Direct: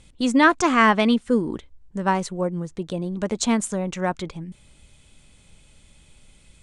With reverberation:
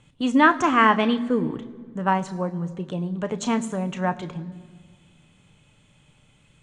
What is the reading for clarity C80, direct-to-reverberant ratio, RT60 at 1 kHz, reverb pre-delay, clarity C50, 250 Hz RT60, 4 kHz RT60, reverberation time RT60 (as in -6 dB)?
18.5 dB, 9.5 dB, 1.7 s, 3 ms, 17.5 dB, 2.3 s, 1.2 s, 1.8 s